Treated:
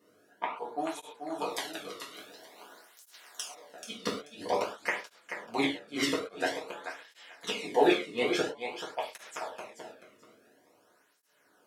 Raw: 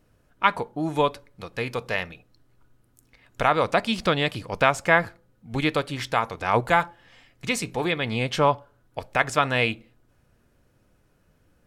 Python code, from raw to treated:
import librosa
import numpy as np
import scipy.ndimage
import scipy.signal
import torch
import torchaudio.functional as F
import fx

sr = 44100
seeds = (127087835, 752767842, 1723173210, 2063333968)

y = fx.spec_clip(x, sr, under_db=30, at=(1.48, 3.48), fade=0.02)
y = scipy.signal.sosfilt(scipy.signal.butter(2, 240.0, 'highpass', fs=sr, output='sos'), y)
y = fx.peak_eq(y, sr, hz=2600.0, db=-4.5, octaves=0.3)
y = fx.hum_notches(y, sr, base_hz=60, count=6)
y = fx.gate_flip(y, sr, shuts_db=-14.0, range_db=-35)
y = fx.echo_feedback(y, sr, ms=434, feedback_pct=22, wet_db=-8.0)
y = fx.rev_gated(y, sr, seeds[0], gate_ms=160, shape='falling', drr_db=-5.0)
y = fx.flanger_cancel(y, sr, hz=0.49, depth_ms=1.3)